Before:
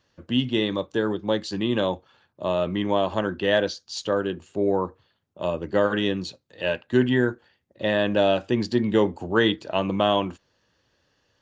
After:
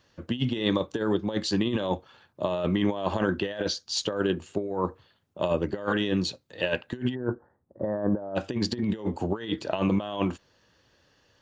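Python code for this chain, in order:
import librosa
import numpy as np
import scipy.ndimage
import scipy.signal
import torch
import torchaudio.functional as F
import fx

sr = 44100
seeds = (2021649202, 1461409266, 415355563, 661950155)

y = fx.cheby2_lowpass(x, sr, hz=2500.0, order=4, stop_db=40, at=(7.14, 8.35), fade=0.02)
y = fx.over_compress(y, sr, threshold_db=-26.0, ratio=-0.5)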